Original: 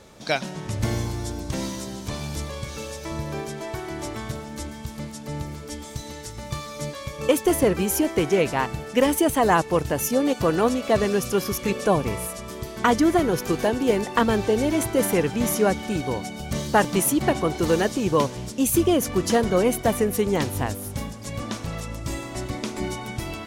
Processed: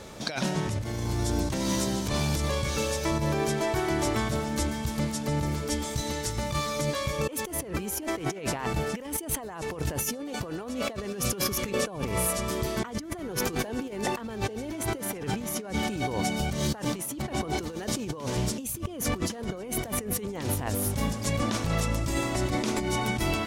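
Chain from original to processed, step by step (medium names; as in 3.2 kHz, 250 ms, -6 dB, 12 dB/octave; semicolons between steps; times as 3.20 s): compressor with a negative ratio -31 dBFS, ratio -1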